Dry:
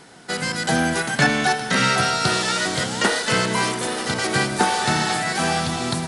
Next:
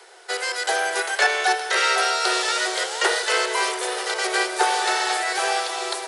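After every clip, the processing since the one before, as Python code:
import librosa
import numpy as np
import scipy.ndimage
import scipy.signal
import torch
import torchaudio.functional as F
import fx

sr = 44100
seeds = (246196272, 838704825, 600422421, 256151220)

y = scipy.signal.sosfilt(scipy.signal.cheby1(10, 1.0, 350.0, 'highpass', fs=sr, output='sos'), x)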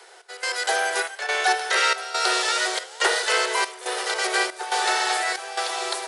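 y = fx.step_gate(x, sr, bpm=70, pattern='x.xxx.xx', floor_db=-12.0, edge_ms=4.5)
y = fx.peak_eq(y, sr, hz=220.0, db=-10.5, octaves=0.78)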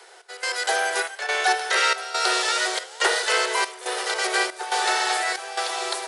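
y = x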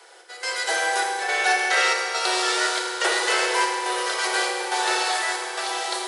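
y = fx.rev_fdn(x, sr, rt60_s=2.7, lf_ratio=1.45, hf_ratio=0.75, size_ms=18.0, drr_db=-0.5)
y = y * librosa.db_to_amplitude(-2.5)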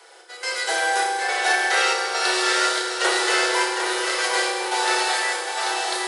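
y = fx.doubler(x, sr, ms=33.0, db=-7)
y = y + 10.0 ** (-7.0 / 20.0) * np.pad(y, (int(755 * sr / 1000.0), 0))[:len(y)]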